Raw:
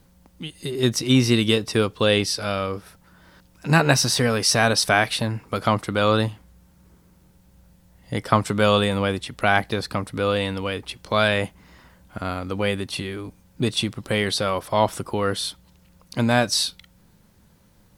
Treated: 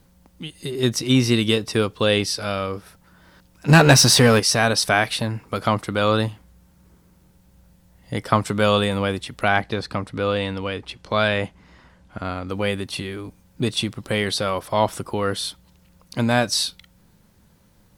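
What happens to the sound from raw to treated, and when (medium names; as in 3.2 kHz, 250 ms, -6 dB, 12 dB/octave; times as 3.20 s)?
3.68–4.40 s: waveshaping leveller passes 2
9.48–12.49 s: distance through air 55 m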